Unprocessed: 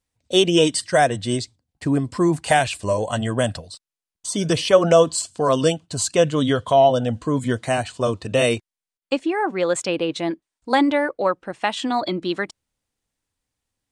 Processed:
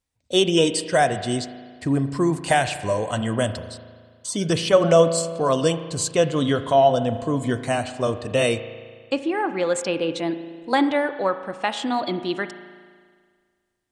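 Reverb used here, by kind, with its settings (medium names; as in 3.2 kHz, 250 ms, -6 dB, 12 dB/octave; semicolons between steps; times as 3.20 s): spring tank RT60 1.8 s, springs 36 ms, chirp 50 ms, DRR 10.5 dB; trim -2 dB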